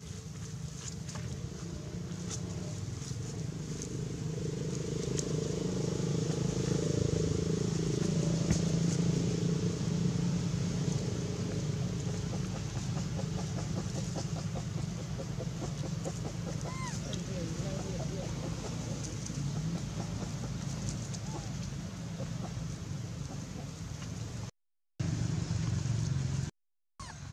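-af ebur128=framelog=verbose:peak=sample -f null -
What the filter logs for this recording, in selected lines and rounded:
Integrated loudness:
  I:         -35.6 LUFS
  Threshold: -45.6 LUFS
Loudness range:
  LRA:         8.1 LU
  Threshold: -55.5 LUFS
  LRA low:   -39.6 LUFS
  LRA high:  -31.5 LUFS
Sample peak:
  Peak:      -15.9 dBFS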